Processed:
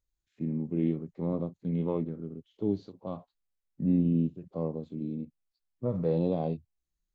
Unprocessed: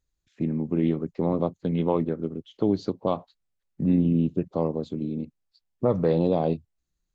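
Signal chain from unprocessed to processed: harmonic-percussive split percussive -17 dB; trim -3.5 dB

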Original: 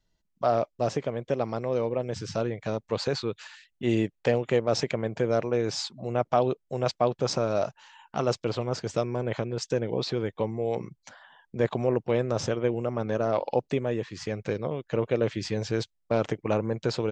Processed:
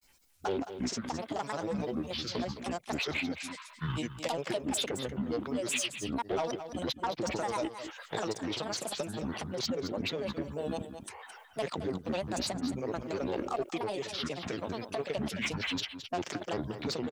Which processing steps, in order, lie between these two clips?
formant shift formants -4 st; bass shelf 65 Hz +11 dB; in parallel at -2.5 dB: peak limiter -20 dBFS, peak gain reduction 10 dB; on the sum: RIAA curve recording; saturation -18 dBFS, distortion -17 dB; granulator 100 ms, grains 20 per s, spray 36 ms, pitch spread up and down by 12 st; on a send: delay 215 ms -12 dB; on the sum: three bands compressed up and down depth 40%; trim -5 dB

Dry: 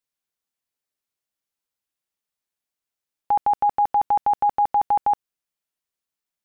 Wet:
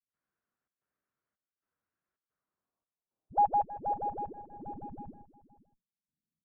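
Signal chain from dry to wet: high-pass 110 Hz 6 dB/octave; bass shelf 450 Hz +11 dB; band-stop 850 Hz, Q 12; waveshaping leveller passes 1; peak limiter -23.5 dBFS, peak gain reduction 12 dB; phase dispersion highs, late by 88 ms, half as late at 330 Hz; trance gate ".xxxx.xxxx." 111 bpm -12 dB; Chebyshev shaper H 4 -25 dB, 8 -23 dB, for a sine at -22 dBFS; low-pass sweep 1.5 kHz -> 200 Hz, 2.24–5.39 s; echo from a far wall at 89 m, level -18 dB

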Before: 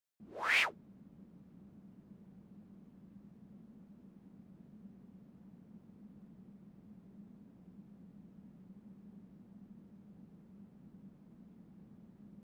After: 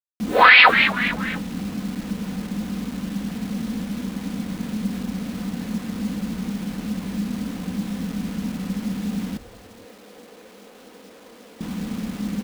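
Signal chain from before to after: elliptic low-pass 4.2 kHz; treble shelf 2.1 kHz +9.5 dB; comb 4 ms, depth 66%; bit crusher 11-bit; 9.37–11.61 s: ladder high-pass 380 Hz, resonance 50%; frequency-shifting echo 238 ms, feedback 49%, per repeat -150 Hz, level -21.5 dB; loudness maximiser +28.5 dB; trim -1 dB

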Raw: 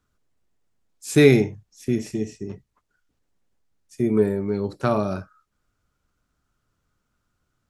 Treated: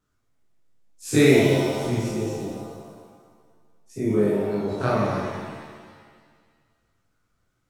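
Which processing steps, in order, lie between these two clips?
every event in the spectrogram widened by 60 ms; chorus 2.2 Hz, delay 20 ms, depth 6.5 ms; vibrato 3.1 Hz 36 cents; pitch-shifted reverb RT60 1.7 s, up +7 st, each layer -8 dB, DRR 0 dB; trim -3 dB

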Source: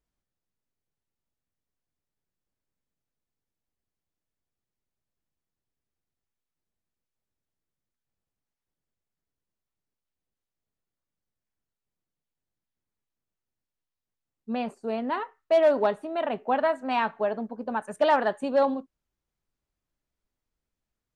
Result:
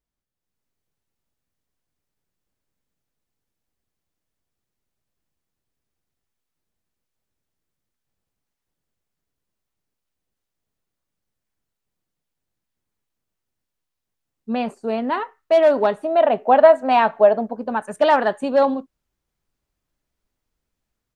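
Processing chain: level rider gain up to 9 dB; 16.04–17.58 s: peaking EQ 640 Hz +8.5 dB 0.74 oct; trim -2.5 dB

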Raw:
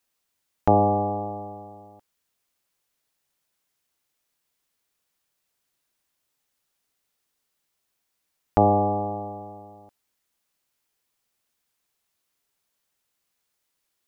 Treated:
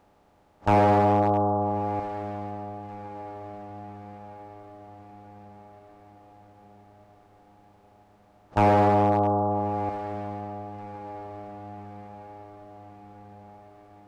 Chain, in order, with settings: spectral levelling over time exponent 0.4; spectral noise reduction 15 dB; hard clipper -15 dBFS, distortion -12 dB; on a send: echo that smears into a reverb 1275 ms, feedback 52%, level -13.5 dB; on the sum: loudspeaker Doppler distortion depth 0.22 ms

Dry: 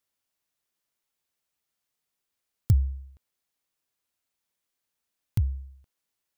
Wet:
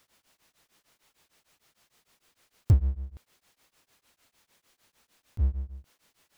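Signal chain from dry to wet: treble shelf 7.8 kHz -10 dB; power-law waveshaper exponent 0.7; tremolo of two beating tones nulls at 6.6 Hz

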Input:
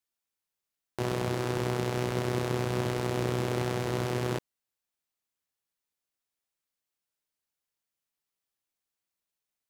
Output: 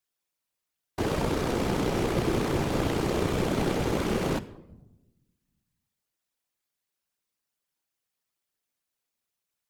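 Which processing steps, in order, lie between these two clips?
simulated room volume 3700 m³, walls furnished, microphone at 0.92 m; whisper effect; trim +2.5 dB

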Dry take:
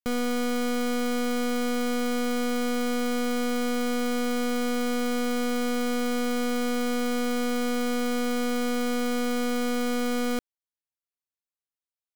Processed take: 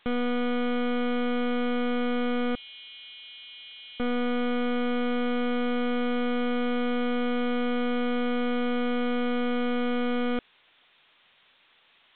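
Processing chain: 2.55–4.00 s: elliptic high-pass 2.7 kHz, stop band 70 dB; added noise blue -48 dBFS; µ-law 64 kbps 8 kHz

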